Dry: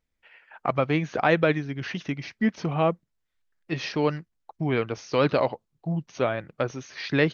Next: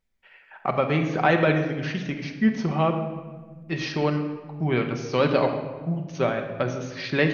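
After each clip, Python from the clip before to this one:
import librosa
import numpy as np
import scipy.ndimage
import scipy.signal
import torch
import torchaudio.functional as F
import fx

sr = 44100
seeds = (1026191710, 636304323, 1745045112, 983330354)

y = fx.room_shoebox(x, sr, seeds[0], volume_m3=1200.0, walls='mixed', distance_m=1.1)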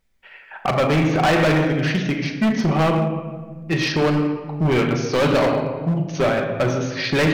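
y = np.clip(10.0 ** (23.0 / 20.0) * x, -1.0, 1.0) / 10.0 ** (23.0 / 20.0)
y = fx.doubler(y, sr, ms=38.0, db=-13.0)
y = y * 10.0 ** (8.5 / 20.0)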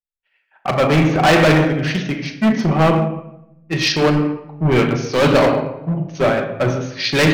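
y = fx.band_widen(x, sr, depth_pct=100)
y = y * 10.0 ** (3.5 / 20.0)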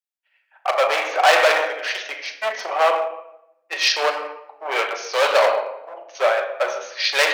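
y = scipy.signal.sosfilt(scipy.signal.butter(6, 530.0, 'highpass', fs=sr, output='sos'), x)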